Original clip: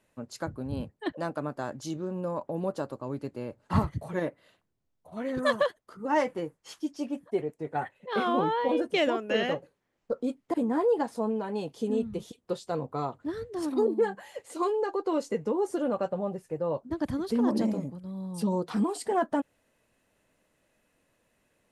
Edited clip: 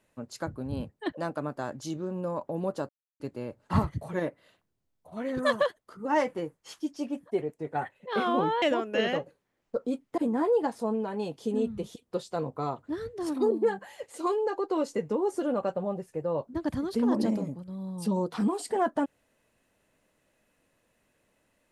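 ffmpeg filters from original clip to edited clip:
-filter_complex "[0:a]asplit=4[a][b][c][d];[a]atrim=end=2.89,asetpts=PTS-STARTPTS,afade=t=out:st=2.886:d=0.004:c=hsin[e];[b]atrim=start=2.89:end=3.2,asetpts=PTS-STARTPTS,volume=0[f];[c]atrim=start=3.2:end=8.622,asetpts=PTS-STARTPTS,afade=t=in:d=0.004:c=hsin[g];[d]atrim=start=8.978[h];[e][f][g]concat=n=3:v=0:a=1[i];[i][h]acrossfade=d=0.004:c1=hsin:c2=hsin"

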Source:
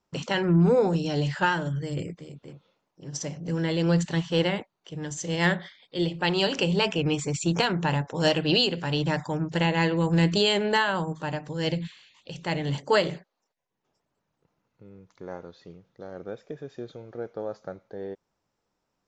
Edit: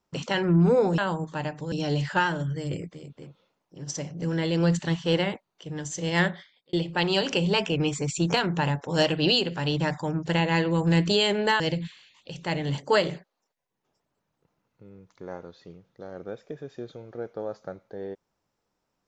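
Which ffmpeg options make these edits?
-filter_complex "[0:a]asplit=5[a][b][c][d][e];[a]atrim=end=0.982[f];[b]atrim=start=10.858:end=11.602[g];[c]atrim=start=0.978:end=5.99,asetpts=PTS-STARTPTS,afade=t=out:st=4.542:d=0.47[h];[d]atrim=start=5.99:end=10.862,asetpts=PTS-STARTPTS,afade=t=in:d=0.004:c=hsin[i];[e]atrim=start=11.598[j];[f][g]acrossfade=d=0.004:c1=hsin:c2=hsin[k];[h][i]concat=n=2:v=0:a=1[l];[k][l]acrossfade=d=0.004:c1=hsin:c2=hsin[m];[m][j]acrossfade=d=0.004:c1=hsin:c2=hsin"

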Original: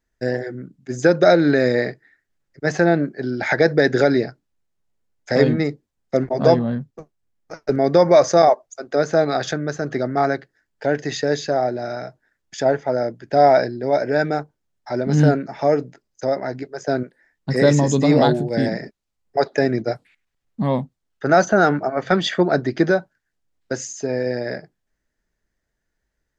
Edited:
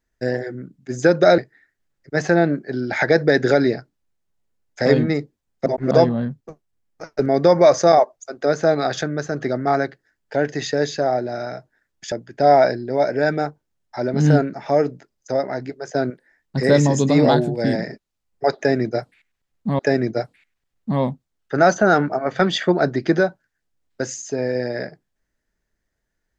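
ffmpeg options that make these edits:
-filter_complex "[0:a]asplit=6[a][b][c][d][e][f];[a]atrim=end=1.382[g];[b]atrim=start=1.878:end=6.162[h];[c]atrim=start=6.158:end=6.412,asetpts=PTS-STARTPTS,areverse[i];[d]atrim=start=6.408:end=12.622[j];[e]atrim=start=13.048:end=20.722[k];[f]atrim=start=19.498[l];[g][h]acrossfade=d=0.004:c1=hsin:c2=hsin[m];[m][i]acrossfade=d=0.004:c1=hsin:c2=hsin[n];[n][j]acrossfade=d=0.004:c1=hsin:c2=hsin[o];[o][k]acrossfade=d=0.004:c1=hsin:c2=hsin[p];[p][l]acrossfade=d=0.004:c1=hsin:c2=hsin"

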